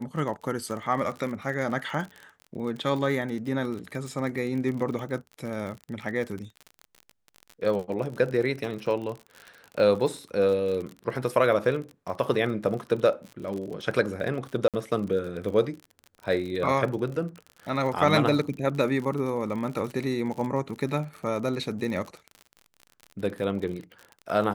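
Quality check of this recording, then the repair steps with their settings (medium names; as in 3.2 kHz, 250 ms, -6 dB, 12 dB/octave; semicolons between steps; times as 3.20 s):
crackle 48 per s -33 dBFS
14.68–14.74 s: dropout 57 ms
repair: de-click; interpolate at 14.68 s, 57 ms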